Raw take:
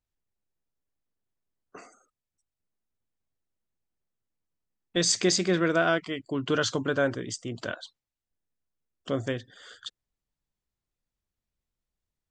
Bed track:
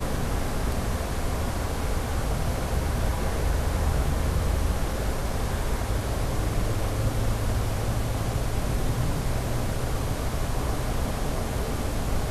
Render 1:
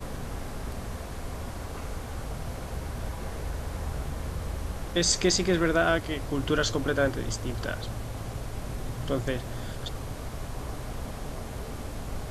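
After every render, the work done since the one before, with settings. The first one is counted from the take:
mix in bed track −8.5 dB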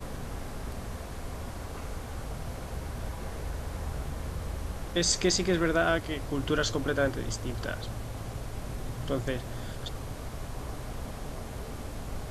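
level −2 dB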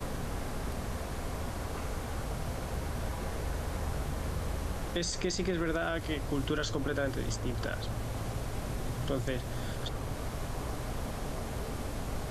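brickwall limiter −20.5 dBFS, peak gain reduction 7.5 dB
multiband upward and downward compressor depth 40%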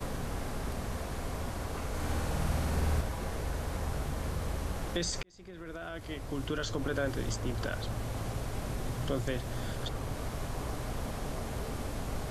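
0:01.89–0:03.01: flutter between parallel walls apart 8.9 metres, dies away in 1.3 s
0:05.23–0:06.97: fade in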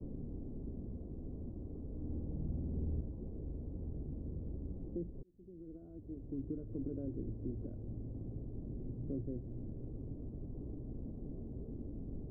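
transistor ladder low-pass 390 Hz, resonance 40%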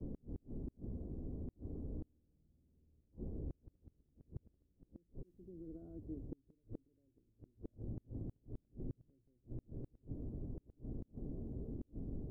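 gate with flip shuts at −34 dBFS, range −35 dB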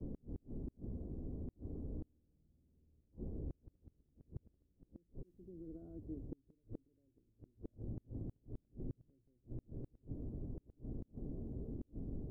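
no processing that can be heard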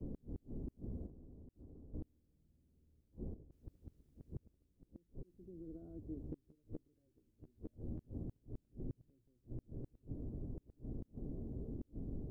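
0:01.06–0:01.94: downward compressor 12 to 1, threshold −52 dBFS
0:03.34–0:04.36: compressor whose output falls as the input rises −50 dBFS, ratio −0.5
0:06.19–0:08.24: double-tracking delay 13 ms −4.5 dB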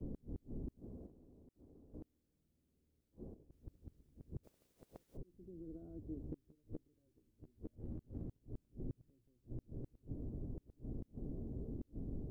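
0:00.79–0:03.49: low-shelf EQ 200 Hz −10.5 dB
0:04.43–0:05.16: ceiling on every frequency bin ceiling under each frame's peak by 25 dB
0:07.75–0:08.42: gain on one half-wave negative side −3 dB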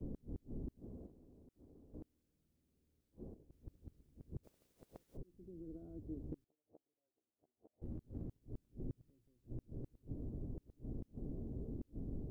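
0:06.44–0:07.82: resonant band-pass 720 Hz, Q 4.3

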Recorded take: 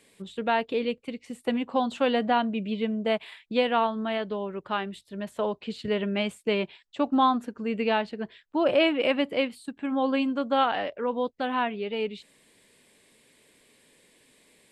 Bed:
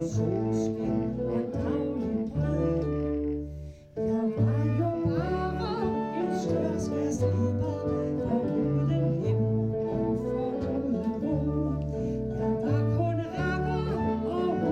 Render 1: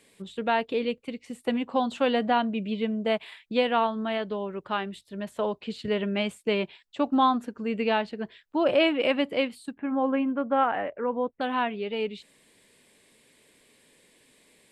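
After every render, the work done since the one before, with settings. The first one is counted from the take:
0:09.74–0:11.41: low-pass filter 2,200 Hz 24 dB per octave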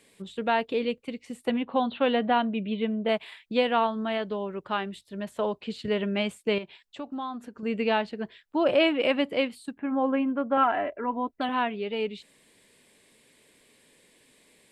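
0:01.50–0:03.09: Butterworth low-pass 4,100 Hz 72 dB per octave
0:06.58–0:07.63: downward compressor 2 to 1, threshold −41 dBFS
0:10.57–0:11.49: comb filter 3 ms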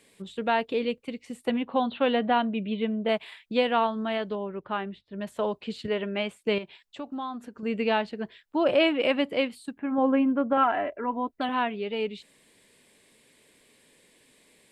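0:04.35–0:05.21: high-frequency loss of the air 300 metres
0:05.87–0:06.42: bass and treble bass −7 dB, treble −7 dB
0:09.98–0:10.53: low-shelf EQ 500 Hz +4.5 dB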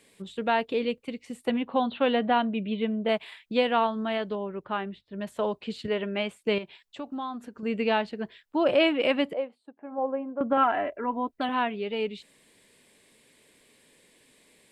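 0:09.33–0:10.41: resonant band-pass 650 Hz, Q 2.2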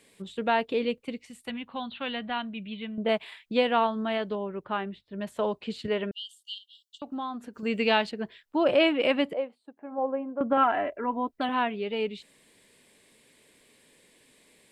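0:01.26–0:02.98: parametric band 450 Hz −14 dB 2.4 octaves
0:06.11–0:07.02: linear-phase brick-wall high-pass 2,800 Hz
0:07.53–0:08.10: high-shelf EQ 3,400 Hz → 2,400 Hz +11 dB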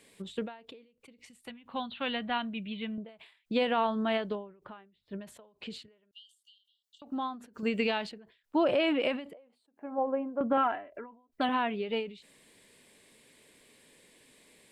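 brickwall limiter −18 dBFS, peak gain reduction 9.5 dB
every ending faded ahead of time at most 120 dB per second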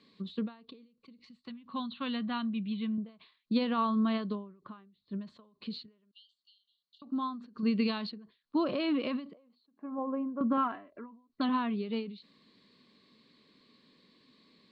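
transistor ladder low-pass 4,500 Hz, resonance 80%
hollow resonant body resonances 210/1,100 Hz, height 17 dB, ringing for 20 ms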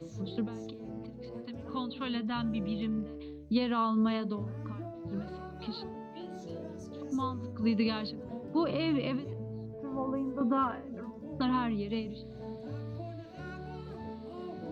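mix in bed −14.5 dB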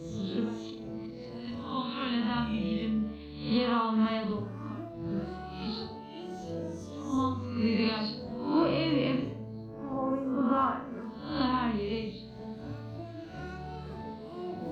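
peak hold with a rise ahead of every peak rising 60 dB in 0.65 s
flutter between parallel walls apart 7.2 metres, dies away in 0.46 s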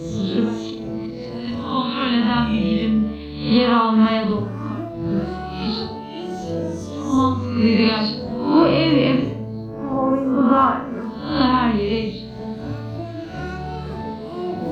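level +12 dB

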